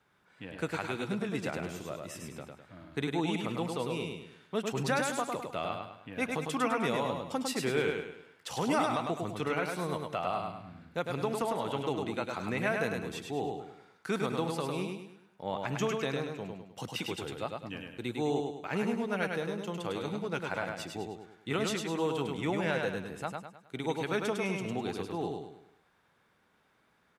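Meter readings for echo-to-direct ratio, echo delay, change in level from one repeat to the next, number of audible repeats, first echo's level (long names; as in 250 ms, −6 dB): −3.0 dB, 103 ms, −7.5 dB, 5, −4.0 dB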